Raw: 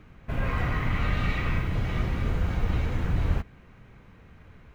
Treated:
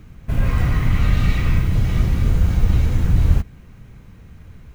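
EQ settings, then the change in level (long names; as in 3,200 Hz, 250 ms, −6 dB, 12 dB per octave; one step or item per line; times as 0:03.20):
bass and treble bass +3 dB, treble +8 dB
low-shelf EQ 310 Hz +8 dB
high-shelf EQ 5,300 Hz +8 dB
0.0 dB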